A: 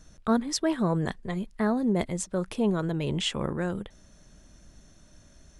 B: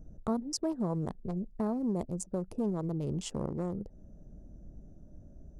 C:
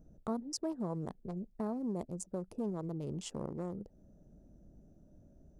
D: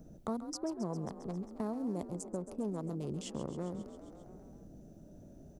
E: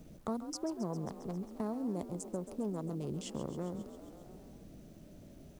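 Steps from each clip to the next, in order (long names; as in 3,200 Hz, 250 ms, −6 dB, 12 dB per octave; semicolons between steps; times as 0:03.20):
adaptive Wiener filter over 41 samples; flat-topped bell 2,400 Hz −13.5 dB; downward compressor 2 to 1, threshold −42 dBFS, peak gain reduction 12.5 dB; level +4.5 dB
low-shelf EQ 90 Hz −9 dB; level −4 dB
on a send: echo with shifted repeats 134 ms, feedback 62%, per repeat +41 Hz, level −13 dB; on the sum: multiband upward and downward compressor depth 40%
bit reduction 11 bits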